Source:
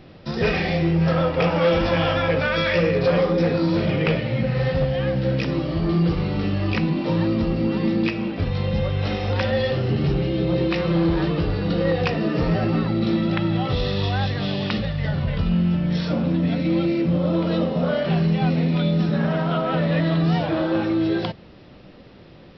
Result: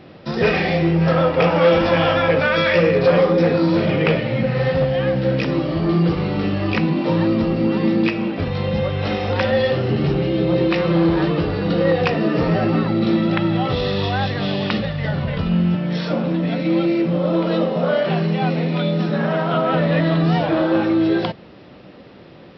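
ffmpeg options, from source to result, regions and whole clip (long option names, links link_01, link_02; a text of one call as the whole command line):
ffmpeg -i in.wav -filter_complex "[0:a]asettb=1/sr,asplit=3[link_01][link_02][link_03];[link_01]atrim=end=15.754[link_04];[link_02]atrim=start=15.75:end=19.54,asetpts=PTS-STARTPTS,afade=type=in:duration=0.004:curve=qsin,afade=type=out:start_time=3.786:duration=0.004:curve=qsin,highpass=160,equalizer=frequency=260:width_type=o:width=0.2:gain=-7[link_05];[link_03]atrim=start=19.536[link_06];[link_04][link_05]acrossfade=duration=0.004:curve1=hsin:curve2=qsin[link_07];[link_07][link_06]acrossfade=duration=0.004:curve1=qsin:curve2=hsin,highpass=frequency=180:poles=1,highshelf=frequency=4100:gain=-7,volume=5.5dB" out.wav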